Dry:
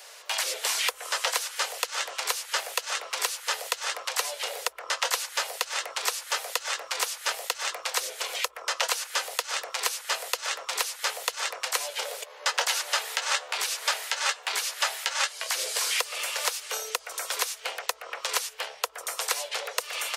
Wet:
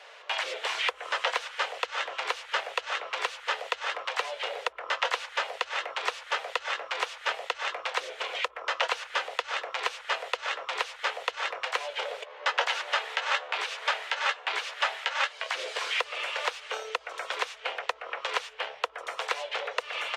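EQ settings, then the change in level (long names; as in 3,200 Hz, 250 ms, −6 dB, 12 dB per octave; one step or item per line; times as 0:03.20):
high-frequency loss of the air 110 metres
flat-topped bell 7,100 Hz −9 dB
+2.0 dB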